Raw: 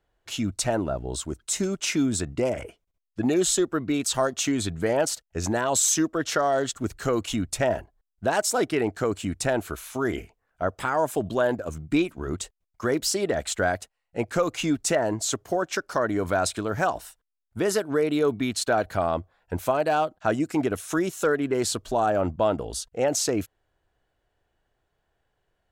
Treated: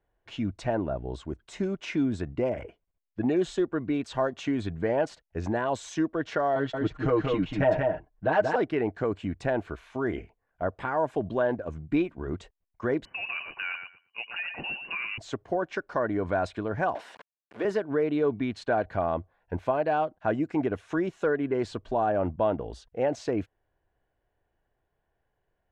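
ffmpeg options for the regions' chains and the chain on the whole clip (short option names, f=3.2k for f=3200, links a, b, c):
-filter_complex "[0:a]asettb=1/sr,asplit=3[a][b][c];[a]atrim=end=6.554[d];[b]atrim=start=6.55:end=8.56,asetpts=PTS-STARTPTS,afade=t=in:d=0.004:c=qsin,afade=t=out:st=2.006:d=0.004:c=qsin,lowpass=4.5k,aecho=1:1:6.5:0.94,atrim=end_sample=88641,aecho=1:1:184:0.668,atrim=end_sample=88641[e];[c]atrim=start=8.556[f];[d][e]acrossfade=d=0.004:c1=hsin:c2=qsin[g];[g][f]acrossfade=d=0.004:c1=qsin:c2=hsin,asettb=1/sr,asplit=3[h][i][j];[h]atrim=end=13.054[k];[i]atrim=start=13.05:end=15.18,asetpts=PTS-STARTPTS,afade=t=in:d=0.004:c=qsin,afade=t=out:st=2.126:d=0.004:c=qsin,acompressor=threshold=-23dB:ratio=4:attack=3.2:release=140:knee=1:detection=peak,aecho=1:1:115|230|345:0.422|0.0717|0.0122,atrim=end_sample=93933,lowpass=f=2.6k:t=q:w=0.5098,lowpass=f=2.6k:t=q:w=0.6013,lowpass=f=2.6k:t=q:w=0.9,lowpass=f=2.6k:t=q:w=2.563,afreqshift=-3000[l];[j]atrim=start=15.176[m];[k][l]acrossfade=d=0.004:c1=hsin:c2=qsin[n];[n][m]acrossfade=d=0.004:c1=qsin:c2=hsin,asettb=1/sr,asplit=3[o][p][q];[o]atrim=end=16.954[r];[p]atrim=start=16.95:end=17.65,asetpts=PTS-STARTPTS,afade=t=in:d=0.004:c=qsin,afade=t=out:st=0.696:d=0.004:c=qsin,aeval=exprs='val(0)+0.5*0.0299*sgn(val(0))':c=same,highpass=400[s];[q]atrim=start=17.646[t];[r][s]acrossfade=d=0.004:c1=hsin:c2=qsin[u];[u][t]acrossfade=d=0.004:c1=qsin:c2=hsin,lowpass=2.2k,bandreject=f=1.3k:w=8.4,volume=-2.5dB"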